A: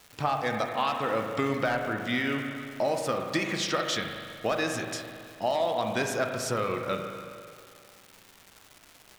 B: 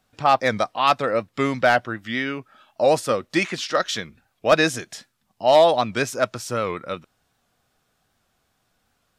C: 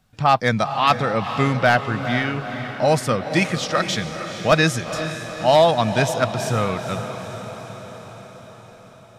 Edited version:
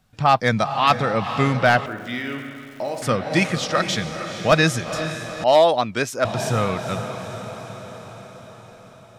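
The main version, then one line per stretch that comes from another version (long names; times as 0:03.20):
C
0:01.86–0:03.02: punch in from A
0:05.44–0:06.25: punch in from B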